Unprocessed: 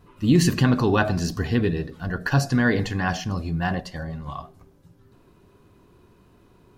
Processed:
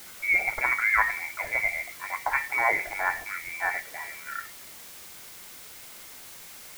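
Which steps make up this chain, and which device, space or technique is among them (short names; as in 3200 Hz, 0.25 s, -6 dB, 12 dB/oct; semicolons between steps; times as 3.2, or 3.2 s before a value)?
scrambled radio voice (BPF 350–2700 Hz; inverted band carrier 2500 Hz; white noise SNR 15 dB)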